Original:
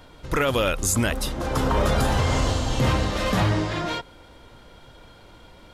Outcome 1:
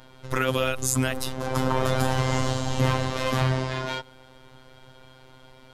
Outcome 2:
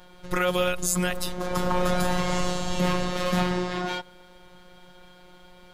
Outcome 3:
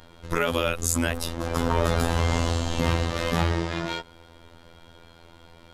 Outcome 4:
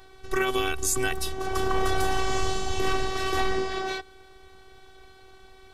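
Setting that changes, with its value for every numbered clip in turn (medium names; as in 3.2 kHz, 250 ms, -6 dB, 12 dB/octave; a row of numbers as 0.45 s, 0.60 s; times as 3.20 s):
robot voice, frequency: 130 Hz, 180 Hz, 84 Hz, 380 Hz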